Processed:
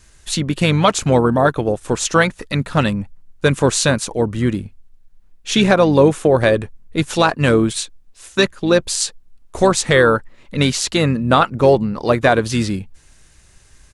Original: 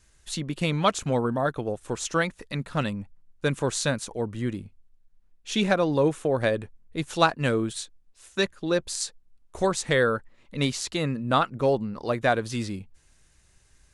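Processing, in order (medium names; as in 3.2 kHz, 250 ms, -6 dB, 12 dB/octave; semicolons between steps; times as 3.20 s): harmony voices -7 st -15 dB; loudness maximiser +12 dB; trim -1 dB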